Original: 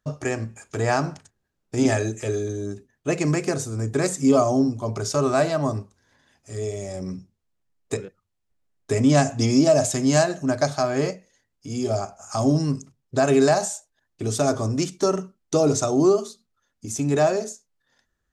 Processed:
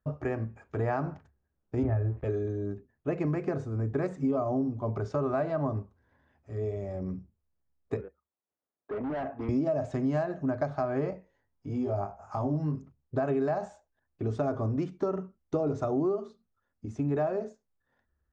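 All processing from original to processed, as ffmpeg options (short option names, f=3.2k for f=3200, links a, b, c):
-filter_complex "[0:a]asettb=1/sr,asplit=3[a][b][c];[a]atrim=end=1.834[d];[b]atrim=start=1.83:end=2.24,asetpts=PTS-STARTPTS,afade=t=in:d=0.004:c=qsin,afade=t=out:st=0.406:d=0.004:c=qsin,lowpass=1.6k,lowshelf=f=130:t=q:w=1.5:g=12.5,aeval=exprs='sgn(val(0))*max(abs(val(0))-0.00891,0)':c=same[e];[c]atrim=start=2.236[f];[d][e]acrossfade=d=0.004:c1=hsin:c2=qsin[g];[g][f]acrossfade=d=0.004:c1=qsin:c2=hsin,asettb=1/sr,asplit=3[h][i][j];[h]atrim=end=8.014[k];[i]atrim=start=8.01:end=9.49,asetpts=PTS-STARTPTS,afade=t=in:d=0.004:c=qsin,afade=t=out:st=1.476:d=0.004:c=qsin,highpass=340,lowpass=2k,asoftclip=type=hard:threshold=-27dB[l];[j]atrim=start=9.486[m];[k][l]acrossfade=d=0.004:c1=hsin:c2=qsin[n];[n][m]acrossfade=d=0.004:c1=qsin:c2=hsin,asettb=1/sr,asplit=3[o][p][q];[o]atrim=end=11.104[r];[p]atrim=start=11.1:end=12.75,asetpts=PTS-STARTPTS,afade=t=in:d=0.004:c=qsin,afade=t=out:st=1.646:d=0.004:c=qsin,equalizer=f=910:t=o:w=0.25:g=6.5,acompressor=threshold=-25dB:ratio=2:attack=3.2:release=140:knee=1:detection=peak,asplit=2[s][t];[t]adelay=20,volume=-5dB[u];[s][u]amix=inputs=2:normalize=0,atrim=end_sample=72765[v];[q]atrim=start=12.746[w];[r][v]acrossfade=d=0.004:c1=hsin:c2=qsin[x];[x][w]acrossfade=d=0.004:c1=qsin:c2=hsin,lowpass=1.5k,equalizer=f=71:w=4.3:g=14,acompressor=threshold=-21dB:ratio=6,volume=-4dB"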